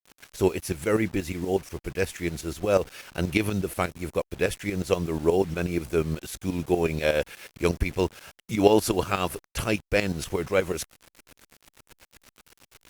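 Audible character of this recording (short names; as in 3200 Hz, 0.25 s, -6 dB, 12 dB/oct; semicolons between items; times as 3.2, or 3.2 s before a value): tremolo saw up 8.3 Hz, depth 75%; a quantiser's noise floor 8-bit, dither none; Opus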